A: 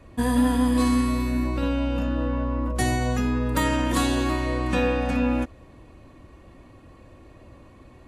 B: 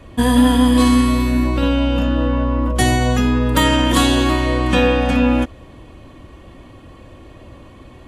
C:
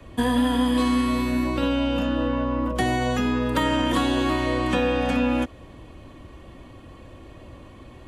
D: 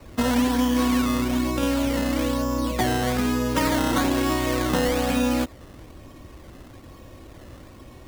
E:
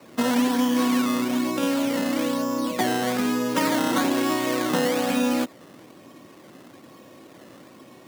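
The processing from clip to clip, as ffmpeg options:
-af "equalizer=f=3200:w=6.7:g=9.5,volume=2.51"
-filter_complex "[0:a]acrossover=split=87|230|1800|4000[s0][s1][s2][s3][s4];[s0]acompressor=threshold=0.02:ratio=4[s5];[s1]acompressor=threshold=0.0398:ratio=4[s6];[s2]acompressor=threshold=0.141:ratio=4[s7];[s3]acompressor=threshold=0.0282:ratio=4[s8];[s4]acompressor=threshold=0.01:ratio=4[s9];[s5][s6][s7][s8][s9]amix=inputs=5:normalize=0,volume=0.668"
-af "acrusher=samples=13:mix=1:aa=0.000001:lfo=1:lforange=13:lforate=1.1"
-af "highpass=f=160:w=0.5412,highpass=f=160:w=1.3066"

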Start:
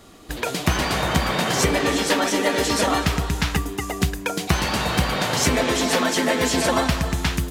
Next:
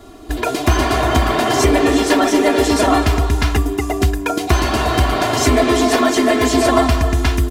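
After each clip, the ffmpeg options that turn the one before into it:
-filter_complex "[0:a]aecho=1:1:2.9:0.88,acrossover=split=1200[s0][s1];[s0]acontrast=88[s2];[s2][s1]amix=inputs=2:normalize=0,volume=0.891"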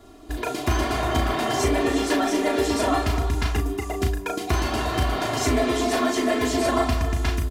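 -filter_complex "[0:a]asplit=2[s0][s1];[s1]adelay=36,volume=0.501[s2];[s0][s2]amix=inputs=2:normalize=0,volume=0.355"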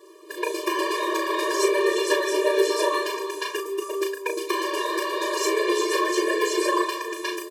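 -af "afftfilt=real='re*eq(mod(floor(b*sr/1024/310),2),1)':imag='im*eq(mod(floor(b*sr/1024/310),2),1)':win_size=1024:overlap=0.75,volume=1.58"

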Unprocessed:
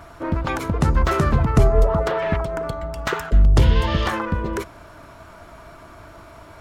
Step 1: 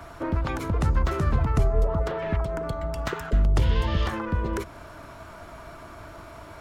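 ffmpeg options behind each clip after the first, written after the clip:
-filter_complex "[0:a]acrossover=split=110|360[s0][s1][s2];[s0]acompressor=threshold=0.112:ratio=4[s3];[s1]acompressor=threshold=0.0251:ratio=4[s4];[s2]acompressor=threshold=0.0282:ratio=4[s5];[s3][s4][s5]amix=inputs=3:normalize=0"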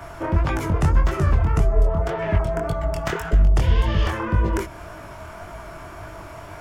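-af "equalizer=f=250:t=o:w=0.33:g=-7,equalizer=f=500:t=o:w=0.33:g=-3,equalizer=f=1250:t=o:w=0.33:g=-3,equalizer=f=4000:t=o:w=0.33:g=-7,flanger=delay=18.5:depth=7.1:speed=1.8,alimiter=limit=0.141:level=0:latency=1:release=445,volume=2.82"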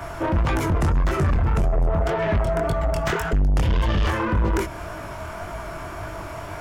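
-af "asoftclip=type=tanh:threshold=0.0944,volume=1.68"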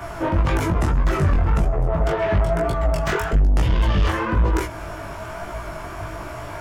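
-af "flanger=delay=16:depth=5.3:speed=1.1,volume=1.58"

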